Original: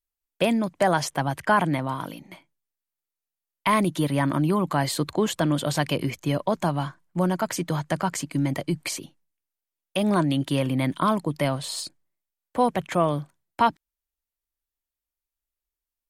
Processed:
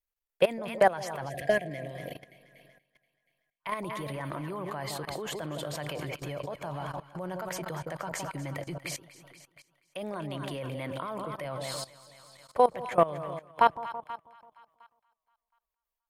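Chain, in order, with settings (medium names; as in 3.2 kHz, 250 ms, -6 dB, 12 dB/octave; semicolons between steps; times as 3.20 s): ten-band graphic EQ 250 Hz -10 dB, 500 Hz +6 dB, 2 kHz +3 dB, 4 kHz -3 dB, 8 kHz -4 dB; two-band feedback delay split 970 Hz, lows 164 ms, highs 239 ms, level -10 dB; level held to a coarse grid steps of 18 dB; time-frequency box 1.29–3.61 s, 770–1600 Hz -24 dB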